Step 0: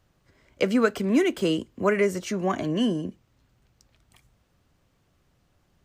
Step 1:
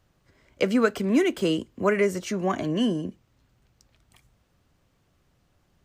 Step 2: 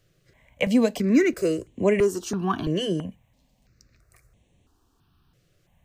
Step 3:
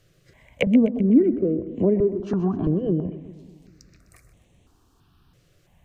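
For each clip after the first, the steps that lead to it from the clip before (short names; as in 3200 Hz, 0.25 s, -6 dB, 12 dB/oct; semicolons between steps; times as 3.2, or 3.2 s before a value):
nothing audible
step phaser 3 Hz 240–4900 Hz; gain +4 dB
treble ducked by the level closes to 360 Hz, closed at -21 dBFS; split-band echo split 310 Hz, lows 0.196 s, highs 0.127 s, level -13.5 dB; gain +4.5 dB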